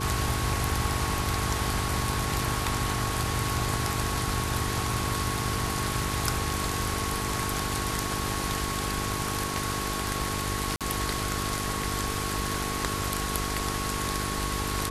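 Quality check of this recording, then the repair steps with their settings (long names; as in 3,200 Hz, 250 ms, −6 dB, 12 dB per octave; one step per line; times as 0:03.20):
mains buzz 50 Hz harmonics 9 −34 dBFS
whistle 1,100 Hz −35 dBFS
0:10.76–0:10.81: drop-out 47 ms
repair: notch filter 1,100 Hz, Q 30
hum removal 50 Hz, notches 9
repair the gap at 0:10.76, 47 ms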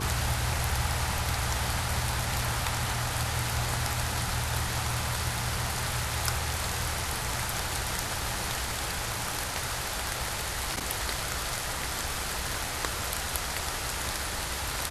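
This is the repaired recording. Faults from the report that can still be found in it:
none of them is left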